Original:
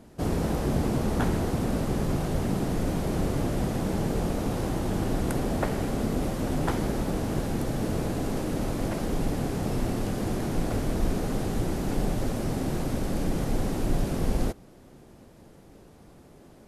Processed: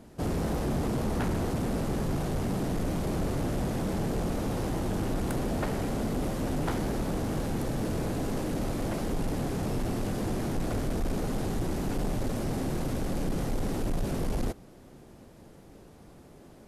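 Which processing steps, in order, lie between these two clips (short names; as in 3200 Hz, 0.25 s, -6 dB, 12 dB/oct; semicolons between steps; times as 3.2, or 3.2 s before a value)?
soft clip -23.5 dBFS, distortion -14 dB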